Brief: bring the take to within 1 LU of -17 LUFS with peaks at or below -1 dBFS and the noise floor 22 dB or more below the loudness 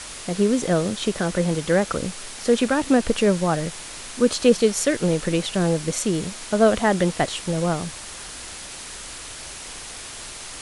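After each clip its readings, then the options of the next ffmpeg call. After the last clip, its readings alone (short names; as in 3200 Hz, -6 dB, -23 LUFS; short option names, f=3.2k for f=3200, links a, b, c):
noise floor -37 dBFS; noise floor target -44 dBFS; loudness -22.0 LUFS; peak -4.0 dBFS; loudness target -17.0 LUFS
-> -af "afftdn=nr=7:nf=-37"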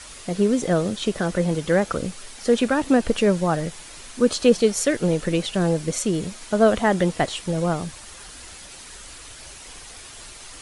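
noise floor -42 dBFS; noise floor target -44 dBFS
-> -af "afftdn=nr=6:nf=-42"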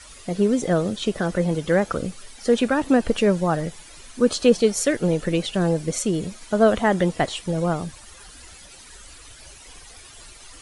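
noise floor -45 dBFS; loudness -22.0 LUFS; peak -4.5 dBFS; loudness target -17.0 LUFS
-> -af "volume=5dB,alimiter=limit=-1dB:level=0:latency=1"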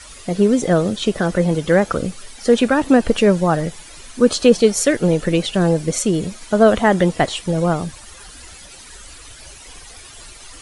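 loudness -17.0 LUFS; peak -1.0 dBFS; noise floor -40 dBFS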